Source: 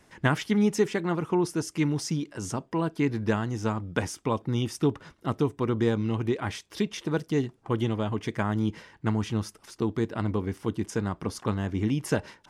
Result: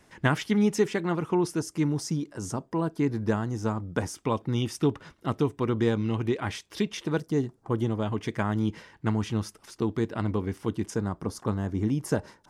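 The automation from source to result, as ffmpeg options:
-af "asetnsamples=n=441:p=0,asendcmd='1.59 equalizer g -7.5;4.15 equalizer g 1;7.2 equalizer g -9;8.02 equalizer g -0.5;10.94 equalizer g -9.5',equalizer=f=2.7k:t=o:w=1.3:g=0"

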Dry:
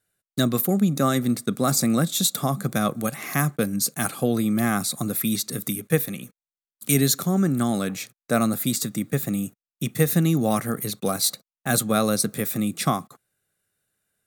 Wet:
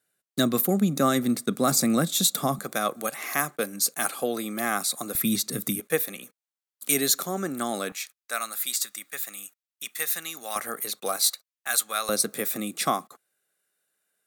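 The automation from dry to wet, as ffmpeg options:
-af "asetnsamples=n=441:p=0,asendcmd='2.59 highpass f 430;5.15 highpass f 140;5.8 highpass f 410;7.92 highpass f 1300;10.56 highpass f 580;11.28 highpass f 1200;12.09 highpass f 340',highpass=190"

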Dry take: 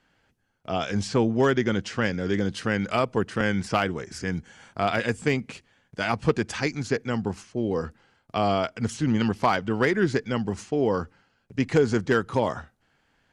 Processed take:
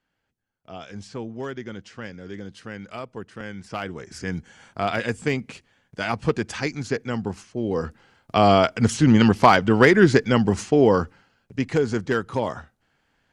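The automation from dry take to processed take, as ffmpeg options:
-af "volume=8dB,afade=t=in:st=3.63:d=0.66:silence=0.281838,afade=t=in:st=7.6:d=0.95:silence=0.398107,afade=t=out:st=10.71:d=0.96:silence=0.354813"

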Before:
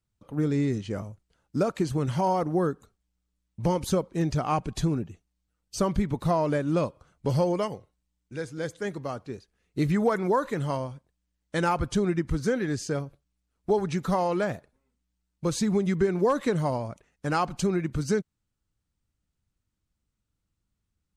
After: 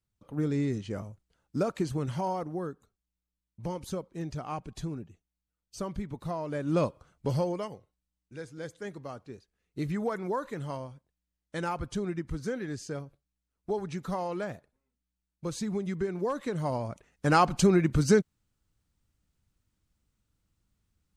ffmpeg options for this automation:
-af "volume=18.5dB,afade=t=out:st=1.83:d=0.77:silence=0.473151,afade=t=in:st=6.5:d=0.36:silence=0.298538,afade=t=out:st=6.86:d=0.74:silence=0.398107,afade=t=in:st=16.51:d=0.84:silence=0.266073"

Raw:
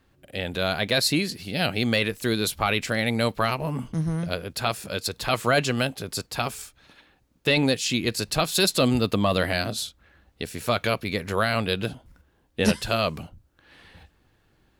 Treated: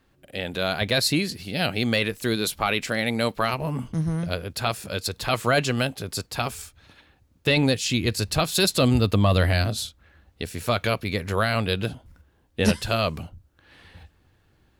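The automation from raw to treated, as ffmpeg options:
-af "asetnsamples=n=441:p=0,asendcmd='0.81 equalizer g 8;1.41 equalizer g 0.5;2.36 equalizer g -6.5;3.53 equalizer g 5;6.52 equalizer g 13;9.85 equalizer g 6',equalizer=f=85:t=o:w=0.86:g=-3.5"

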